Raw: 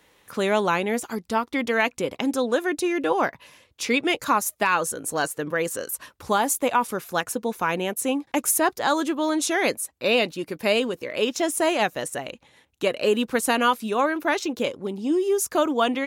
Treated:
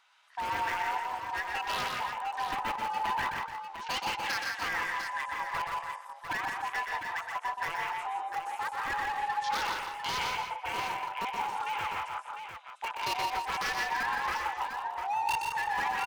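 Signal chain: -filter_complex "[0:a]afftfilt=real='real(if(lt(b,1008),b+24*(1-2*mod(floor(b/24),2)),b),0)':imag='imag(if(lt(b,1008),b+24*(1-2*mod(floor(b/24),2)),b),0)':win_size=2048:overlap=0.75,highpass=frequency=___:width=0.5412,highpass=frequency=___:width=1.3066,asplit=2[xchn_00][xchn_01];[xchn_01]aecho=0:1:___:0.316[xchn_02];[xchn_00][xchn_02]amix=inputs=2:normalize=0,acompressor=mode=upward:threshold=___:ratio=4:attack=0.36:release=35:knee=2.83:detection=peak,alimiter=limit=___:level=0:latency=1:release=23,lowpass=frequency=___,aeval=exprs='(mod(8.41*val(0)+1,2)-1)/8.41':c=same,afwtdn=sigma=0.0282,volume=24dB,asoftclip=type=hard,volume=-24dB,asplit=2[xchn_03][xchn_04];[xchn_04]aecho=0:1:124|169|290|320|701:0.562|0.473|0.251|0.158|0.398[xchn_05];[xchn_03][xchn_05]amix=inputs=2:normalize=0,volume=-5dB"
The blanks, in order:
870, 870, 152, -33dB, -16dB, 5700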